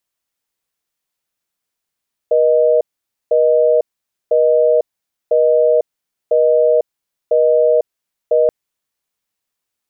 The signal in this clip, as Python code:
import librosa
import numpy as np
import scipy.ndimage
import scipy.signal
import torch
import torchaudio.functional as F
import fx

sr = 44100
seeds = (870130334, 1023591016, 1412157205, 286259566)

y = fx.call_progress(sr, length_s=6.18, kind='busy tone', level_db=-12.0)